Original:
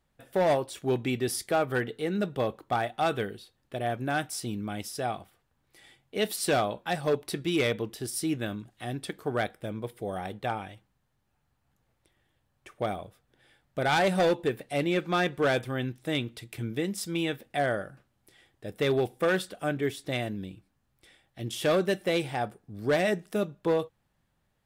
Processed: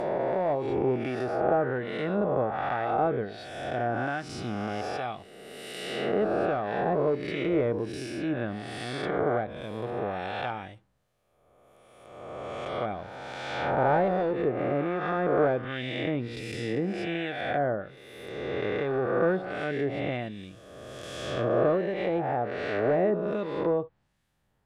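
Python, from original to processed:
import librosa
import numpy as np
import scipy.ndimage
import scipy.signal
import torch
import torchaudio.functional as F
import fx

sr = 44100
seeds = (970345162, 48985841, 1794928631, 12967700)

y = fx.spec_swells(x, sr, rise_s=2.06)
y = fx.harmonic_tremolo(y, sr, hz=1.3, depth_pct=50, crossover_hz=1700.0)
y = fx.env_lowpass_down(y, sr, base_hz=1100.0, full_db=-23.0)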